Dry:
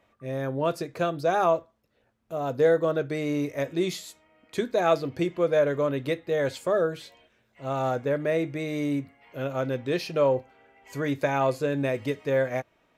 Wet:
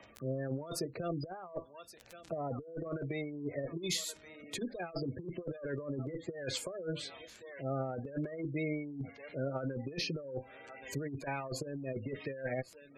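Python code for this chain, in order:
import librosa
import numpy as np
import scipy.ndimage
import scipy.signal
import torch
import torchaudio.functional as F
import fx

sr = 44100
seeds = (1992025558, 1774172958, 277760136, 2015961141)

y = fx.diode_clip(x, sr, knee_db=-16.0)
y = fx.rotary(y, sr, hz=1.2)
y = fx.echo_thinned(y, sr, ms=1121, feedback_pct=65, hz=1100.0, wet_db=-21.5)
y = fx.dmg_crackle(y, sr, seeds[0], per_s=39.0, level_db=-43.0)
y = fx.spec_gate(y, sr, threshold_db=-20, keep='strong')
y = fx.over_compress(y, sr, threshold_db=-33.0, ratio=-0.5)
y = fx.high_shelf(y, sr, hz=3100.0, db=11.0)
y = fx.band_squash(y, sr, depth_pct=40)
y = F.gain(torch.from_numpy(y), -4.5).numpy()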